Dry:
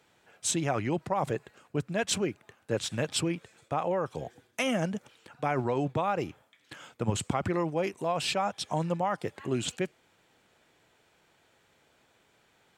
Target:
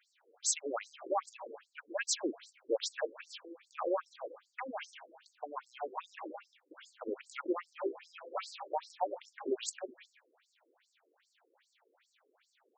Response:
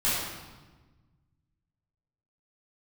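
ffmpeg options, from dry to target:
-filter_complex "[0:a]asettb=1/sr,asplit=3[link_01][link_02][link_03];[link_01]atrim=end=4.614[link_04];[link_02]atrim=start=4.61:end=5.75,asetpts=PTS-STARTPTS,afade=type=in:duration=0.004:curve=qsin,afade=type=out:start_time=1.136:duration=0.004:curve=qsin,lowshelf=frequency=690:width_type=q:width=3:gain=-6.5[link_05];[link_03]atrim=start=5.746[link_06];[link_04][link_05]acrossfade=duration=0.004:curve1=hsin:curve2=qsin[link_07];[link_07][link_06]acrossfade=duration=0.004:curve1=qsin:curve2=hsin,asplit=2[link_08][link_09];[1:a]atrim=start_sample=2205,afade=type=out:start_time=0.27:duration=0.01,atrim=end_sample=12348,adelay=150[link_10];[link_09][link_10]afir=irnorm=-1:irlink=0,volume=-23dB[link_11];[link_08][link_11]amix=inputs=2:normalize=0,afftfilt=real='re*between(b*sr/1024,360*pow(6300/360,0.5+0.5*sin(2*PI*2.5*pts/sr))/1.41,360*pow(6300/360,0.5+0.5*sin(2*PI*2.5*pts/sr))*1.41)':imag='im*between(b*sr/1024,360*pow(6300/360,0.5+0.5*sin(2*PI*2.5*pts/sr))/1.41,360*pow(6300/360,0.5+0.5*sin(2*PI*2.5*pts/sr))*1.41)':win_size=1024:overlap=0.75"

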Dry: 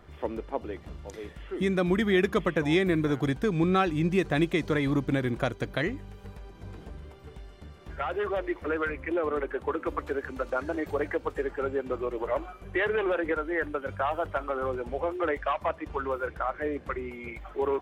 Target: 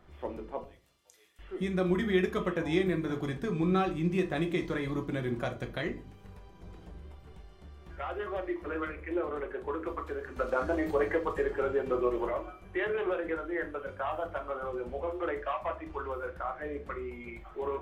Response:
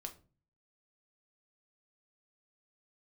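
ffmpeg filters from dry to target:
-filter_complex "[0:a]asettb=1/sr,asplit=3[link_01][link_02][link_03];[link_01]atrim=end=0.644[link_04];[link_02]atrim=start=0.64:end=1.39,asetpts=PTS-STARTPTS,afade=type=in:duration=0.004:curve=qsin,afade=type=out:start_time=0.746:duration=0.004:curve=qsin,aderivative[link_05];[link_03]atrim=start=1.386[link_06];[link_04][link_05]acrossfade=duration=0.004:curve1=hsin:curve2=qsin[link_07];[link_07][link_06]acrossfade=duration=0.004:curve1=qsin:curve2=hsin,asplit=3[link_08][link_09][link_10];[link_08]afade=type=out:start_time=10.36:duration=0.02[link_11];[link_09]acontrast=51,afade=type=in:start_time=10.36:duration=0.02,afade=type=out:start_time=12.29:duration=0.02[link_12];[link_10]afade=type=in:start_time=12.29:duration=0.02[link_13];[link_11][link_12][link_13]amix=inputs=3:normalize=0[link_14];[1:a]atrim=start_sample=2205[link_15];[link_14][link_15]afir=irnorm=-1:irlink=0,volume=-2dB"

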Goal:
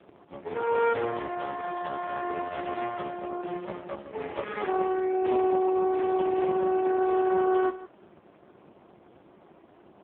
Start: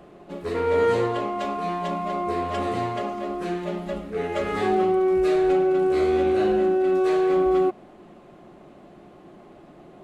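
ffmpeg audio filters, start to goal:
ffmpeg -i in.wav -filter_complex "[0:a]bandreject=frequency=60:width_type=h:width=6,bandreject=frequency=120:width_type=h:width=6,bandreject=frequency=180:width_type=h:width=6,acrossover=split=230|600|1600[link_01][link_02][link_03][link_04];[link_01]acompressor=threshold=-48dB:ratio=6[link_05];[link_03]aeval=exprs='0.1*(cos(1*acos(clip(val(0)/0.1,-1,1)))-cos(1*PI/2))+0.00398*(cos(4*acos(clip(val(0)/0.1,-1,1)))-cos(4*PI/2))+0.00708*(cos(6*acos(clip(val(0)/0.1,-1,1)))-cos(6*PI/2))':channel_layout=same[link_06];[link_05][link_02][link_06][link_04]amix=inputs=4:normalize=0,aeval=exprs='max(val(0),0)':channel_layout=same,aecho=1:1:161:0.188" -ar 8000 -c:a libopencore_amrnb -b:a 4750 out.amr

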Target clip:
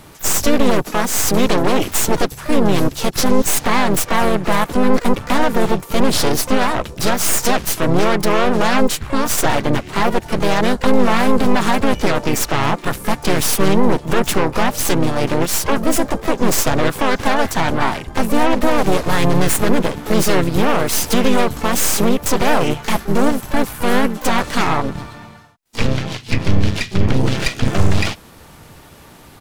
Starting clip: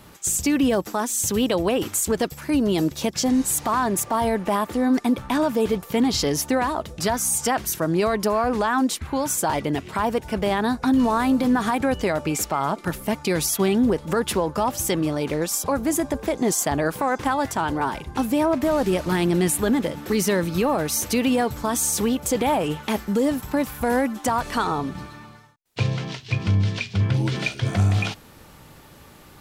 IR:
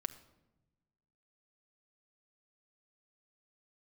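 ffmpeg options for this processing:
-filter_complex "[0:a]aeval=exprs='0.376*(cos(1*acos(clip(val(0)/0.376,-1,1)))-cos(1*PI/2))+0.00237*(cos(2*acos(clip(val(0)/0.376,-1,1)))-cos(2*PI/2))+0.0299*(cos(3*acos(clip(val(0)/0.376,-1,1)))-cos(3*PI/2))+0.106*(cos(5*acos(clip(val(0)/0.376,-1,1)))-cos(5*PI/2))+0.188*(cos(6*acos(clip(val(0)/0.376,-1,1)))-cos(6*PI/2))':channel_layout=same,asplit=4[link_01][link_02][link_03][link_04];[link_02]asetrate=35002,aresample=44100,atempo=1.25992,volume=-4dB[link_05];[link_03]asetrate=37084,aresample=44100,atempo=1.18921,volume=-16dB[link_06];[link_04]asetrate=88200,aresample=44100,atempo=0.5,volume=-12dB[link_07];[link_01][link_05][link_06][link_07]amix=inputs=4:normalize=0,volume=-3dB"

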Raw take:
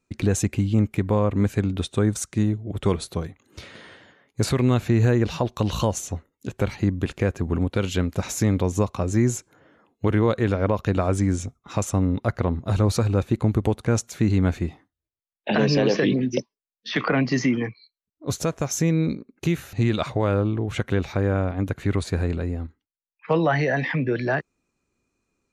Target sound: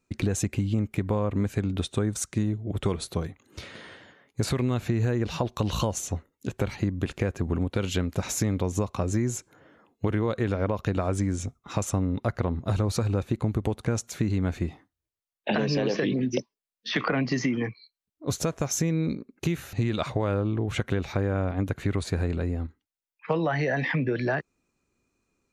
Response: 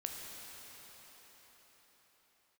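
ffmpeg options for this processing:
-af "acompressor=threshold=-22dB:ratio=6"

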